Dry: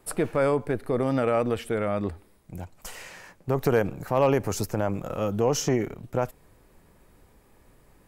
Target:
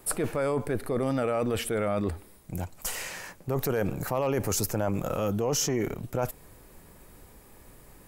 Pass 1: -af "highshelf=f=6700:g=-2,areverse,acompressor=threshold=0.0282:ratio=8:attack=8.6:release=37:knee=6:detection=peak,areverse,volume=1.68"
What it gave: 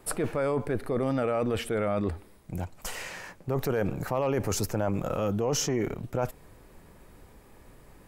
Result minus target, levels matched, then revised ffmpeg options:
8 kHz band -3.0 dB
-af "highshelf=f=6700:g=9,areverse,acompressor=threshold=0.0282:ratio=8:attack=8.6:release=37:knee=6:detection=peak,areverse,volume=1.68"

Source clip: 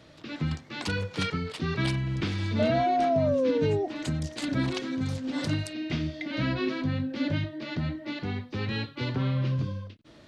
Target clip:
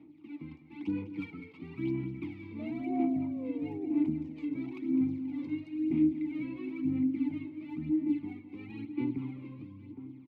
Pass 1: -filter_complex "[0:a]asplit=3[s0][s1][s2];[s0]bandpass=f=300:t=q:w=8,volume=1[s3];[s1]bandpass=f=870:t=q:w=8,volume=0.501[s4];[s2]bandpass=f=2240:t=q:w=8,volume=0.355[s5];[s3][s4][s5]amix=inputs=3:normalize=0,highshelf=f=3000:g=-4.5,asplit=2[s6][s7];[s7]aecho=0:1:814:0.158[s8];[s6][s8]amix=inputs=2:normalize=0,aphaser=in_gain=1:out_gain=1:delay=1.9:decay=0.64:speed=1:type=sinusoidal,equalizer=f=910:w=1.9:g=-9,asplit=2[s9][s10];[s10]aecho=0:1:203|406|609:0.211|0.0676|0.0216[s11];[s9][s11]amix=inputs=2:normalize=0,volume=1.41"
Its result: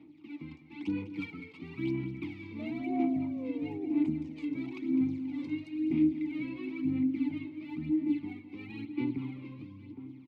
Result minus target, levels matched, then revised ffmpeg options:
4 kHz band +5.5 dB
-filter_complex "[0:a]asplit=3[s0][s1][s2];[s0]bandpass=f=300:t=q:w=8,volume=1[s3];[s1]bandpass=f=870:t=q:w=8,volume=0.501[s4];[s2]bandpass=f=2240:t=q:w=8,volume=0.355[s5];[s3][s4][s5]amix=inputs=3:normalize=0,highshelf=f=3000:g=-15.5,asplit=2[s6][s7];[s7]aecho=0:1:814:0.158[s8];[s6][s8]amix=inputs=2:normalize=0,aphaser=in_gain=1:out_gain=1:delay=1.9:decay=0.64:speed=1:type=sinusoidal,equalizer=f=910:w=1.9:g=-9,asplit=2[s9][s10];[s10]aecho=0:1:203|406|609:0.211|0.0676|0.0216[s11];[s9][s11]amix=inputs=2:normalize=0,volume=1.41"

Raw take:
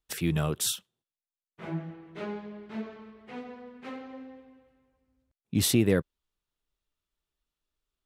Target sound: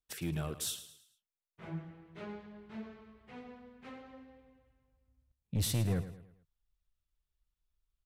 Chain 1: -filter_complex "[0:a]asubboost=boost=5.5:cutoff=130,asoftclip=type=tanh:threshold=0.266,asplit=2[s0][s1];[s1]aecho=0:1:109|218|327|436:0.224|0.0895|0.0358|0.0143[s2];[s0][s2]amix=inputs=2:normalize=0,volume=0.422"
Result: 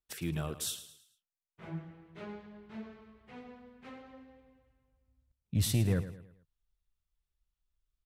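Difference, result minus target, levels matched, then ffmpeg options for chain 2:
saturation: distortion -9 dB
-filter_complex "[0:a]asubboost=boost=5.5:cutoff=130,asoftclip=type=tanh:threshold=0.112,asplit=2[s0][s1];[s1]aecho=0:1:109|218|327|436:0.224|0.0895|0.0358|0.0143[s2];[s0][s2]amix=inputs=2:normalize=0,volume=0.422"

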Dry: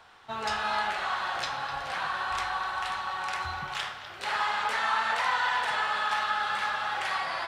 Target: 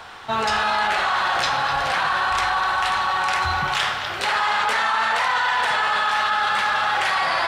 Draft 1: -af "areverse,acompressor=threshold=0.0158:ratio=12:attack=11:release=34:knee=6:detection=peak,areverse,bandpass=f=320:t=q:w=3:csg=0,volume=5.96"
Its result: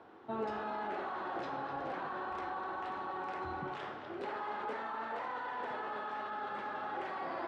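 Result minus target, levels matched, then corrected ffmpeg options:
250 Hz band +14.0 dB
-af "areverse,acompressor=threshold=0.0158:ratio=12:attack=11:release=34:knee=6:detection=peak,areverse,volume=5.96"

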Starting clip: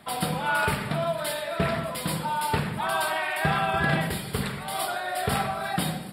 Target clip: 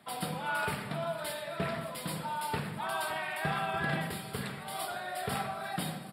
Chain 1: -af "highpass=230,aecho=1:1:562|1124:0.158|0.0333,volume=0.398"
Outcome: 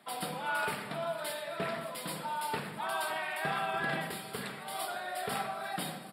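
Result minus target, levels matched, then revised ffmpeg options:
125 Hz band -6.5 dB
-af "highpass=100,aecho=1:1:562|1124:0.158|0.0333,volume=0.398"

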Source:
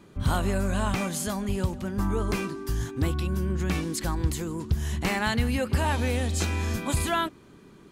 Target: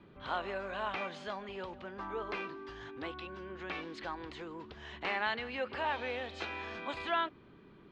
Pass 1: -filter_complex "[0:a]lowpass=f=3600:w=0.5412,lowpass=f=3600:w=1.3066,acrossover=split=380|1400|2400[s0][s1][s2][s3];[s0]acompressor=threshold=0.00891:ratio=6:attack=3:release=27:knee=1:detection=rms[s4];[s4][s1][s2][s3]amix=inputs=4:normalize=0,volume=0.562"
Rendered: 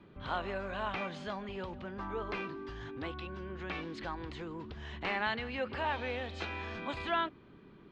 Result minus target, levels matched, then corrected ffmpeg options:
compression: peak gain reduction -9 dB
-filter_complex "[0:a]lowpass=f=3600:w=0.5412,lowpass=f=3600:w=1.3066,acrossover=split=380|1400|2400[s0][s1][s2][s3];[s0]acompressor=threshold=0.00251:ratio=6:attack=3:release=27:knee=1:detection=rms[s4];[s4][s1][s2][s3]amix=inputs=4:normalize=0,volume=0.562"

